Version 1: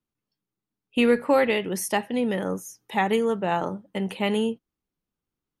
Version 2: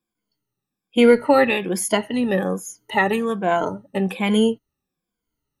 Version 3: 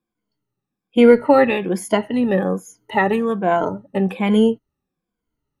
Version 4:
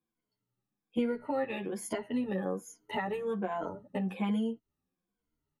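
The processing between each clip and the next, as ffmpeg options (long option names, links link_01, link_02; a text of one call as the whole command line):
ffmpeg -i in.wav -af "afftfilt=real='re*pow(10,16/40*sin(2*PI*(1.8*log(max(b,1)*sr/1024/100)/log(2)-(-1.2)*(pts-256)/sr)))':imag='im*pow(10,16/40*sin(2*PI*(1.8*log(max(b,1)*sr/1024/100)/log(2)-(-1.2)*(pts-256)/sr)))':win_size=1024:overlap=0.75,volume=2.5dB" out.wav
ffmpeg -i in.wav -af "highshelf=frequency=2700:gain=-11.5,volume=3dB" out.wav
ffmpeg -i in.wav -filter_complex "[0:a]acompressor=threshold=-24dB:ratio=6,asplit=2[link_01][link_02];[link_02]adelay=10.1,afreqshift=1.1[link_03];[link_01][link_03]amix=inputs=2:normalize=1,volume=-3.5dB" out.wav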